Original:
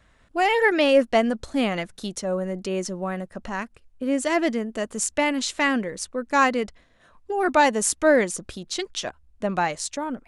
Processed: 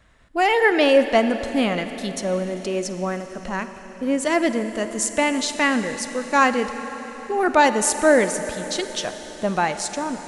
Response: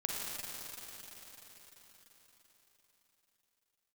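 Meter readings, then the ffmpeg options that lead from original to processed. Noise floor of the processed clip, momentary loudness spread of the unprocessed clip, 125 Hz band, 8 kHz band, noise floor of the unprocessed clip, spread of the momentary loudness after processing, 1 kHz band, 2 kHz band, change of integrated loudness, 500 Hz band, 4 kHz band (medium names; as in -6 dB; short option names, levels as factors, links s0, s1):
-40 dBFS, 13 LU, +2.0 dB, +2.5 dB, -59 dBFS, 13 LU, +2.5 dB, +2.5 dB, +2.5 dB, +2.5 dB, +2.5 dB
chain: -filter_complex "[0:a]asplit=2[s0][s1];[1:a]atrim=start_sample=2205[s2];[s1][s2]afir=irnorm=-1:irlink=0,volume=0.316[s3];[s0][s3]amix=inputs=2:normalize=0"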